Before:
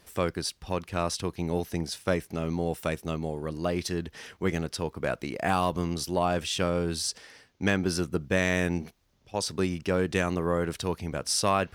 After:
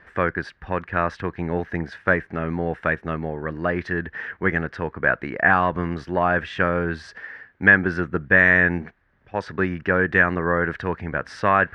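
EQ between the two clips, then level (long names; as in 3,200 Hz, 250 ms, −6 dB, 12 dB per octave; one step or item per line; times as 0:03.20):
low-pass with resonance 1,700 Hz, resonance Q 6.1
+3.5 dB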